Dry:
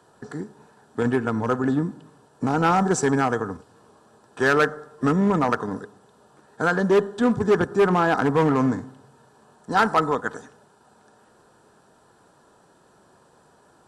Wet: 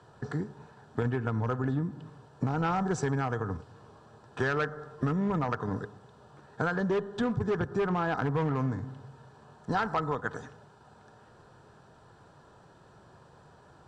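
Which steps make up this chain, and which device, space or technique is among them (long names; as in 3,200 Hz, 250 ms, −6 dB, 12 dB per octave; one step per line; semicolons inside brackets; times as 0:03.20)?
jukebox (low-pass filter 5,200 Hz 12 dB per octave; low shelf with overshoot 170 Hz +7 dB, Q 1.5; downward compressor 5 to 1, threshold −27 dBFS, peak gain reduction 11.5 dB)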